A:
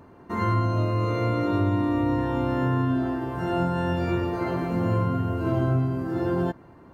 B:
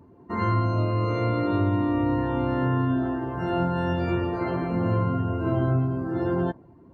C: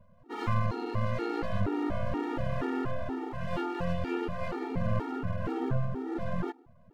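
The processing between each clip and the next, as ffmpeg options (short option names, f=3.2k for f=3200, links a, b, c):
-af "afftdn=nr=14:nf=-45"
-af "aeval=exprs='max(val(0),0)':c=same,afftfilt=real='re*gt(sin(2*PI*2.1*pts/sr)*(1-2*mod(floor(b*sr/1024/240),2)),0)':imag='im*gt(sin(2*PI*2.1*pts/sr)*(1-2*mod(floor(b*sr/1024/240),2)),0)':win_size=1024:overlap=0.75"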